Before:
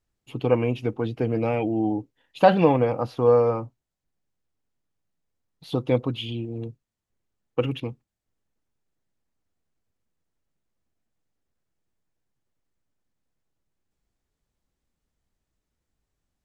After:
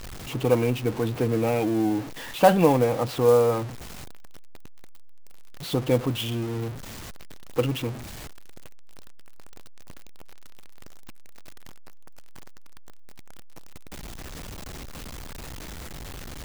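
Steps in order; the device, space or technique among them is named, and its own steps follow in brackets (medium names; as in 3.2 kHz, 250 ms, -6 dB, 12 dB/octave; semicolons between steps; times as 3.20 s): early CD player with a faulty converter (jump at every zero crossing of -30 dBFS; sampling jitter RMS 0.022 ms); trim -1 dB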